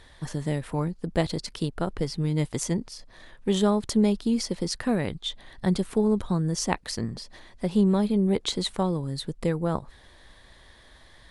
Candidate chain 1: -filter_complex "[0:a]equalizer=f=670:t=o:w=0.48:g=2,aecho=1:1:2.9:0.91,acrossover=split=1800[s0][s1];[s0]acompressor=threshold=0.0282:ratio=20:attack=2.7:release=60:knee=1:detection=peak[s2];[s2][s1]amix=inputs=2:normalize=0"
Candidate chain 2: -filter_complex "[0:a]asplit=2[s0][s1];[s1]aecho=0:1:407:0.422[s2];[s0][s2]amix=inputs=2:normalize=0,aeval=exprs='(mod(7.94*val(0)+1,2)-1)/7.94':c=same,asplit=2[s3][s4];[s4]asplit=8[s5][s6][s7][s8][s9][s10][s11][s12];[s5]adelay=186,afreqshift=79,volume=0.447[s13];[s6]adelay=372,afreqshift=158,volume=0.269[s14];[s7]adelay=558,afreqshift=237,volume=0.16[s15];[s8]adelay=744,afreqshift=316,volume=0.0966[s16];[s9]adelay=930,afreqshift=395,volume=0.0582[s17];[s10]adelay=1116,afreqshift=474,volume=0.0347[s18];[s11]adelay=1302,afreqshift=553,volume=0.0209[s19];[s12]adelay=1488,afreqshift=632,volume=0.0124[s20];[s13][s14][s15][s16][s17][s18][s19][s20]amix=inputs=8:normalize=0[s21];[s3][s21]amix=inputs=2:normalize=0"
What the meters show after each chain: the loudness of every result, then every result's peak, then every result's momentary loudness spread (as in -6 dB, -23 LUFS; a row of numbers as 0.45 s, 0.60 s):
-33.0 LUFS, -26.0 LUFS; -11.0 dBFS, -12.0 dBFS; 20 LU, 10 LU